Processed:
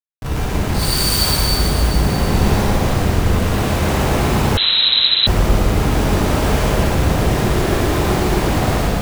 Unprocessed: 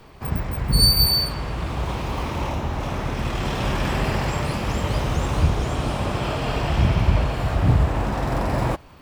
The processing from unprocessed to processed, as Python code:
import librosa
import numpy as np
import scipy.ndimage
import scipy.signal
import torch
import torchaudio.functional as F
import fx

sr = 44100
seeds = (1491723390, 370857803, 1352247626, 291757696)

y = np.minimum(x, 2.0 * 10.0 ** (-19.5 / 20.0) - x)
y = fx.highpass(y, sr, hz=220.0, slope=12, at=(1.98, 2.89))
y = fx.peak_eq(y, sr, hz=360.0, db=14.0, octaves=0.42, at=(7.1, 8.12))
y = fx.schmitt(y, sr, flips_db=-25.5)
y = y + 10.0 ** (-4.5 / 20.0) * np.pad(y, (int(115 * sr / 1000.0), 0))[:len(y)]
y = fx.rev_plate(y, sr, seeds[0], rt60_s=3.7, hf_ratio=0.9, predelay_ms=0, drr_db=-10.0)
y = fx.freq_invert(y, sr, carrier_hz=4000, at=(4.57, 5.27))
y = y * 10.0 ** (-4.0 / 20.0)